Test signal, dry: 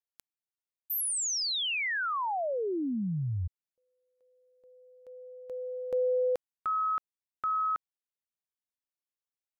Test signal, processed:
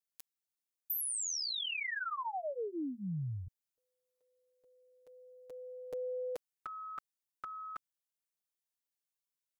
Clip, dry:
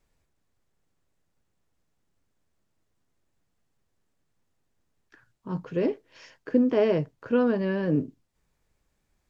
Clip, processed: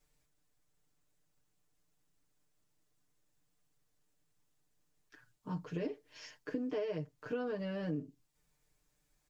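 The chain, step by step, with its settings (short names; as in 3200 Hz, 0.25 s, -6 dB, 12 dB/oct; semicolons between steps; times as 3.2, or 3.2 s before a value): high shelf 3900 Hz +9 dB; comb 6.7 ms, depth 97%; compressor 5:1, threshold -27 dBFS; gain -8 dB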